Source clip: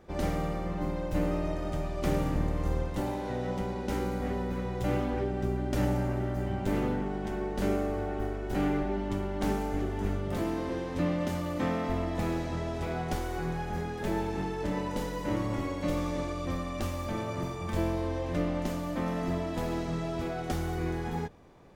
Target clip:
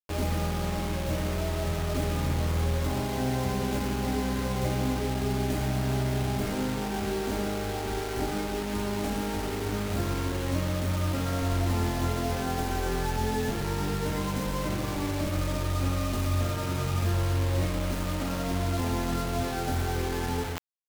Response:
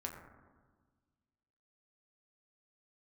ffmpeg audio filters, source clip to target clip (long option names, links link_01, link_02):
-filter_complex "[0:a]acrossover=split=110|420[link_01][link_02][link_03];[link_01]acompressor=threshold=-40dB:ratio=4[link_04];[link_02]acompressor=threshold=-37dB:ratio=4[link_05];[link_03]acompressor=threshold=-41dB:ratio=4[link_06];[link_04][link_05][link_06]amix=inputs=3:normalize=0[link_07];[1:a]atrim=start_sample=2205,afade=type=out:start_time=0.25:duration=0.01,atrim=end_sample=11466[link_08];[link_07][link_08]afir=irnorm=-1:irlink=0,acrusher=bits=6:mix=0:aa=0.000001,asetrate=45938,aresample=44100,areverse,acompressor=mode=upward:threshold=-36dB:ratio=2.5,areverse,volume=6dB"